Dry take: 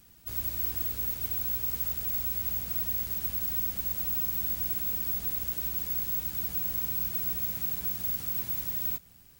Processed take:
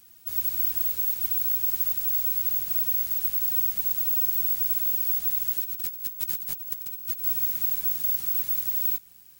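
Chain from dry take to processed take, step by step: tilt EQ +2 dB/octave; 5.64–7.24 s: compressor with a negative ratio -29 dBFS, ratio -0.5; trim -2 dB

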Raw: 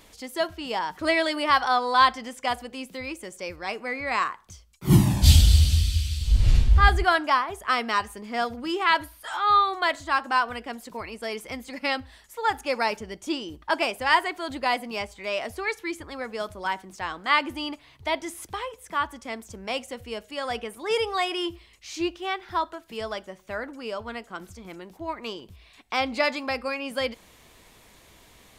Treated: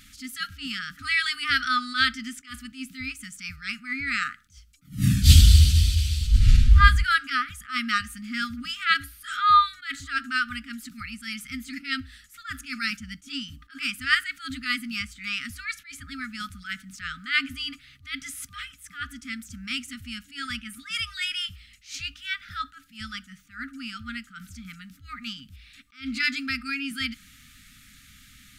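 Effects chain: FFT band-reject 290–1200 Hz; attacks held to a fixed rise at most 190 dB/s; trim +3 dB

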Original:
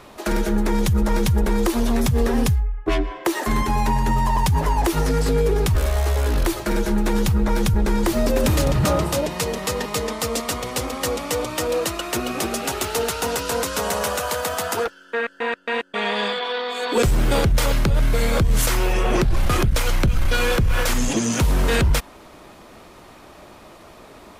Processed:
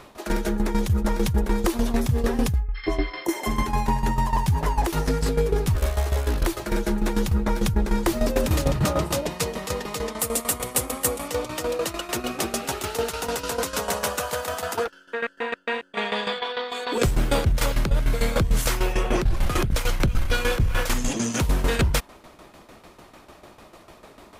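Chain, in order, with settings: 2.78–3.59 s: spectral replace 1.1–5.3 kHz after; tremolo saw down 6.7 Hz, depth 75%; 10.19–11.28 s: resonant high shelf 7.1 kHz +8.5 dB, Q 1.5

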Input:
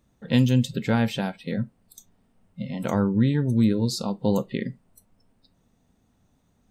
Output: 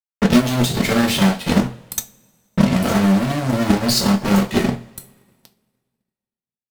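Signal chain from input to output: fuzz box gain 45 dB, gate -46 dBFS; two-slope reverb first 0.32 s, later 1.7 s, from -21 dB, DRR -0.5 dB; transient shaper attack +10 dB, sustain -3 dB; trim -7.5 dB

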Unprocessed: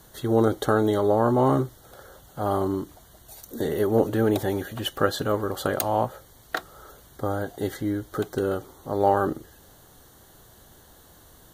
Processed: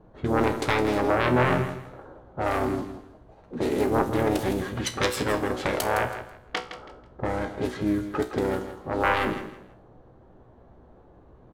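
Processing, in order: self-modulated delay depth 0.66 ms; bass shelf 320 Hz -3.5 dB; in parallel at +2 dB: compression 6:1, threshold -32 dBFS, peak gain reduction 14.5 dB; on the sum: harmony voices -7 st -5 dB; level-controlled noise filter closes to 600 Hz, open at -18.5 dBFS; feedback comb 62 Hz, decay 0.36 s, harmonics all, mix 70%; feedback delay 163 ms, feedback 25%, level -11 dB; trim +2.5 dB

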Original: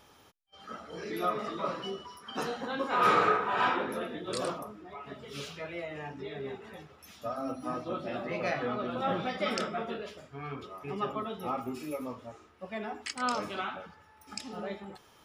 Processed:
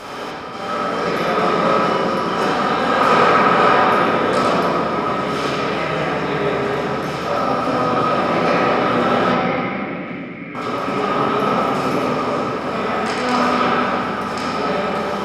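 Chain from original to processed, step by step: spectral levelling over time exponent 0.4; 9.32–10.55 s: two resonant band-passes 760 Hz, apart 3 oct; reverberation RT60 2.8 s, pre-delay 4 ms, DRR -9.5 dB; trim -1 dB

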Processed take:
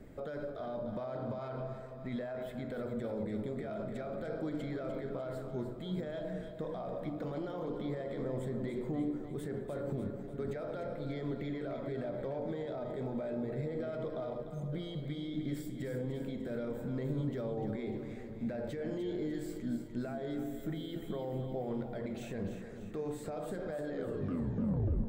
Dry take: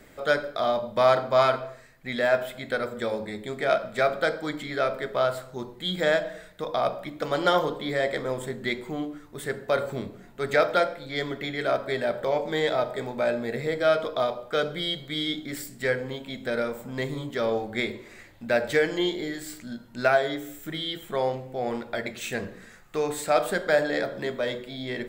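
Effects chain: tape stop on the ending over 1.18 s; spectral selection erased 14.42–14.73 s, 200–6100 Hz; peak limiter -29 dBFS, peak gain reduction 20 dB; tilt shelf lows +9.5 dB, about 750 Hz; on a send: two-band feedback delay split 380 Hz, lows 415 ms, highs 298 ms, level -8.5 dB; on the sum: trim -5.5 dB

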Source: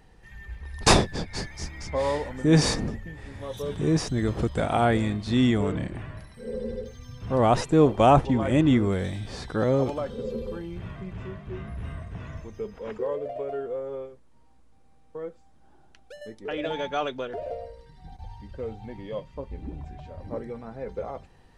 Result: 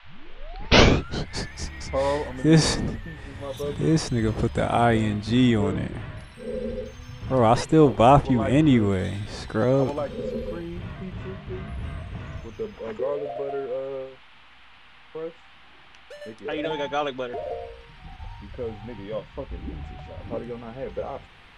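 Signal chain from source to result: tape start-up on the opening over 1.35 s; band noise 710–3300 Hz -55 dBFS; trim +2 dB

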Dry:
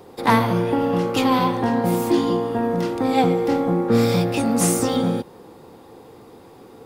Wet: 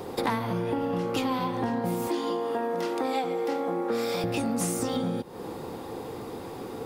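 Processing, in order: 2.07–4.24 s: high-pass 370 Hz 12 dB/octave; compression 8:1, threshold -33 dBFS, peak gain reduction 20.5 dB; trim +7 dB

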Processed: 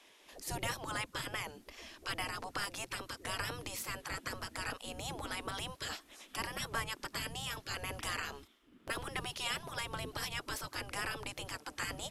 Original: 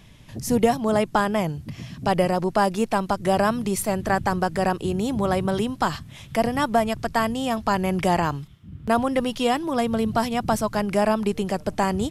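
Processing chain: wow and flutter 28 cents; spectral gate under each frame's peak -15 dB weak; trim -5 dB

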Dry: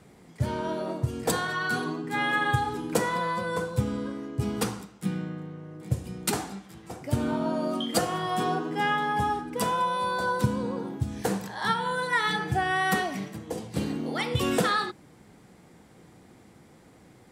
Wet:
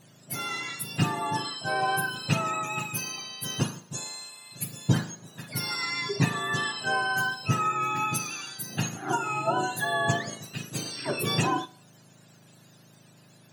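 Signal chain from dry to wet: spectrum inverted on a logarithmic axis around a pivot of 1 kHz; Schroeder reverb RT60 0.74 s, combs from 31 ms, DRR 20 dB; tape speed +28%

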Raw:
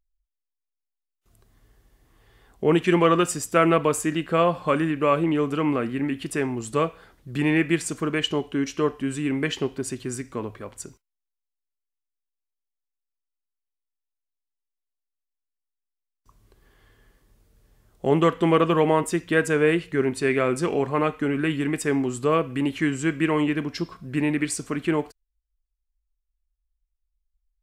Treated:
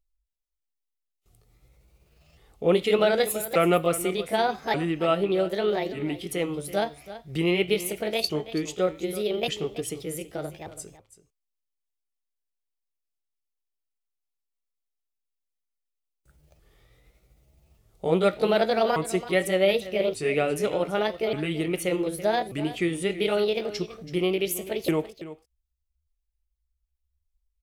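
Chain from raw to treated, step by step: sawtooth pitch modulation +7.5 st, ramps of 1185 ms; graphic EQ with 31 bands 250 Hz -9 dB, 1 kHz -7 dB, 1.6 kHz -11 dB; on a send: delay 330 ms -14.5 dB

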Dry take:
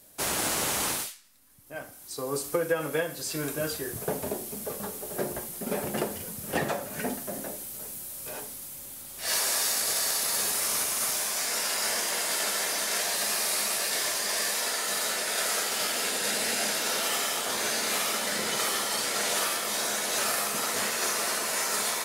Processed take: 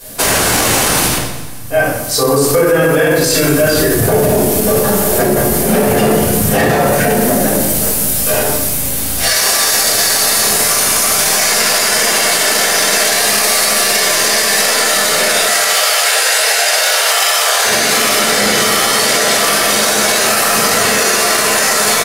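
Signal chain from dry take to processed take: 15.45–17.65 s: high-pass 550 Hz 24 dB/octave; feedback delay 173 ms, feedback 49%, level -20 dB; simulated room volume 220 m³, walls mixed, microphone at 5.1 m; loudness maximiser +14.5 dB; trim -2 dB

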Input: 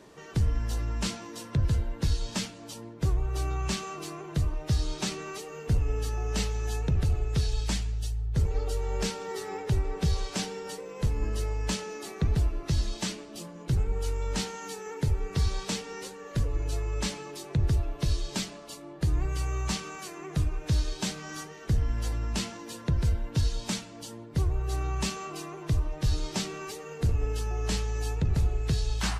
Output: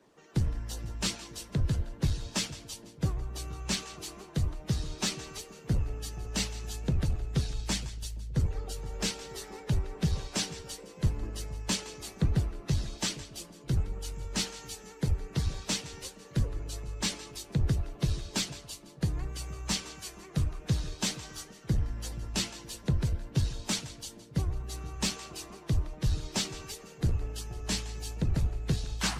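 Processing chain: harmonic-percussive split harmonic -11 dB; two-band feedback delay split 670 Hz, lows 471 ms, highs 167 ms, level -15.5 dB; in parallel at -8 dB: saturation -33.5 dBFS, distortion -7 dB; on the sum: three bands expanded up and down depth 40%

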